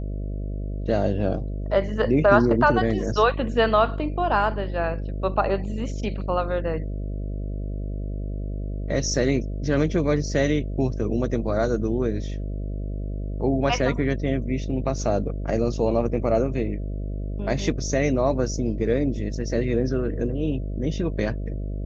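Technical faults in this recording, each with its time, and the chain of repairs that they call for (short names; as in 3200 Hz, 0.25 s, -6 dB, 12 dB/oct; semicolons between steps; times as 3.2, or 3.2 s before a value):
buzz 50 Hz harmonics 13 -29 dBFS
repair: de-hum 50 Hz, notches 13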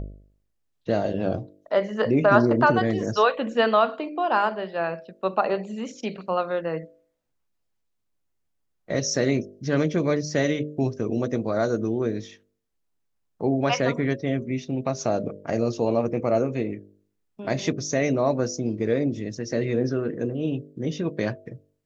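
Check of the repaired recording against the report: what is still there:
none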